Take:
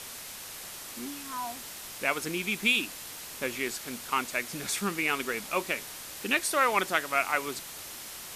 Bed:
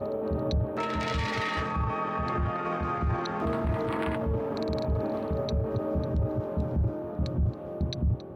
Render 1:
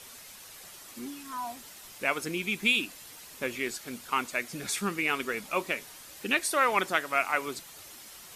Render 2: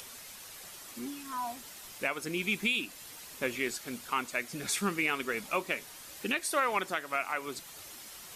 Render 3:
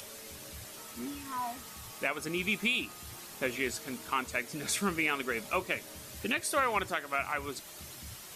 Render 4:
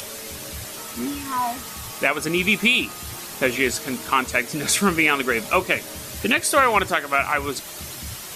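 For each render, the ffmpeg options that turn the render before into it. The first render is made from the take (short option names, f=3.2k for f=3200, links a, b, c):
-af "afftdn=nr=8:nf=-43"
-af "acompressor=mode=upward:threshold=-45dB:ratio=2.5,alimiter=limit=-18dB:level=0:latency=1:release=333"
-filter_complex "[1:a]volume=-23dB[a];[0:a][a]amix=inputs=2:normalize=0"
-af "volume=12dB"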